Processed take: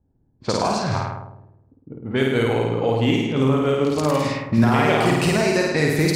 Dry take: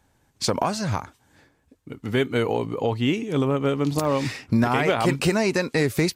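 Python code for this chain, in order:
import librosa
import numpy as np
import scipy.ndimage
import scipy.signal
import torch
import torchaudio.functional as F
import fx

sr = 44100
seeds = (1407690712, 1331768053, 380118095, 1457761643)

y = fx.room_flutter(x, sr, wall_m=9.0, rt60_s=1.2)
y = fx.env_lowpass(y, sr, base_hz=320.0, full_db=-15.5)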